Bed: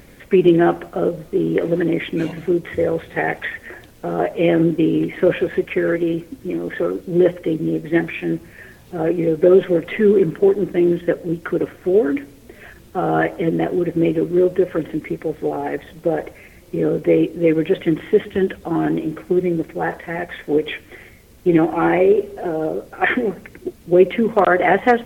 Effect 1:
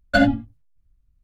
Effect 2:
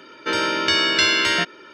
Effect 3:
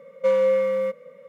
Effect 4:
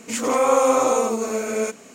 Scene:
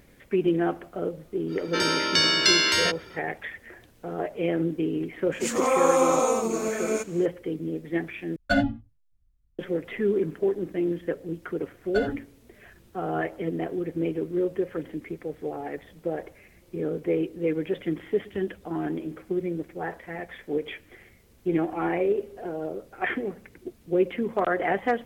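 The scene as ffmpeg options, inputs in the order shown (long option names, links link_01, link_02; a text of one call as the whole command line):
ffmpeg -i bed.wav -i cue0.wav -i cue1.wav -i cue2.wav -i cue3.wav -filter_complex "[1:a]asplit=2[link_01][link_02];[0:a]volume=-10.5dB[link_03];[2:a]aexciter=amount=2.6:drive=4.2:freq=4300[link_04];[link_03]asplit=2[link_05][link_06];[link_05]atrim=end=8.364[link_07];[link_01]atrim=end=1.23,asetpts=PTS-STARTPTS,volume=-6dB[link_08];[link_06]atrim=start=9.586[link_09];[link_04]atrim=end=1.73,asetpts=PTS-STARTPTS,volume=-4.5dB,afade=type=in:duration=0.05,afade=type=out:start_time=1.68:duration=0.05,adelay=1470[link_10];[4:a]atrim=end=1.94,asetpts=PTS-STARTPTS,volume=-3.5dB,afade=type=in:duration=0.004:curve=hsin,afade=type=out:start_time=1.936:duration=0.004:curve=hsin,adelay=5320[link_11];[link_02]atrim=end=1.23,asetpts=PTS-STARTPTS,volume=-13dB,afade=type=in:duration=0.004:curve=hsin,afade=type=out:start_time=1.226:duration=0.004:curve=hsin,adelay=11810[link_12];[link_07][link_08]acrossfade=duration=0.004:curve1=hsin:curve2=hsin[link_13];[link_13][link_09]acrossfade=duration=0.004:curve1=hsin:curve2=hsin[link_14];[link_14][link_10][link_11][link_12]amix=inputs=4:normalize=0" out.wav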